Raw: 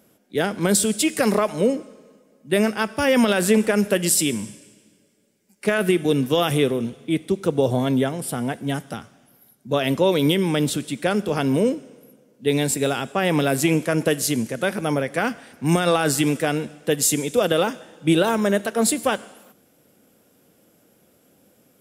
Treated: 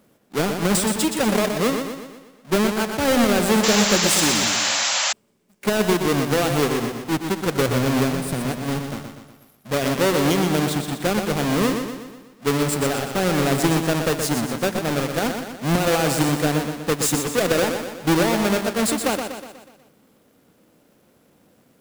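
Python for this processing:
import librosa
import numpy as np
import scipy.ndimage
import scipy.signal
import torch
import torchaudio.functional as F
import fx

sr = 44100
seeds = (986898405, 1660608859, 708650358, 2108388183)

y = fx.halfwave_hold(x, sr)
y = fx.echo_feedback(y, sr, ms=122, feedback_pct=51, wet_db=-6.5)
y = fx.spec_paint(y, sr, seeds[0], shape='noise', start_s=3.63, length_s=1.5, low_hz=510.0, high_hz=7700.0, level_db=-16.0)
y = y * 10.0 ** (-5.5 / 20.0)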